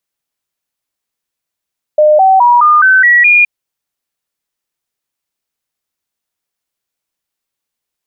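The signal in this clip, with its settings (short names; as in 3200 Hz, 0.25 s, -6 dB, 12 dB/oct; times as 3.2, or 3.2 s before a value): stepped sine 607 Hz up, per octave 3, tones 7, 0.21 s, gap 0.00 s -3.5 dBFS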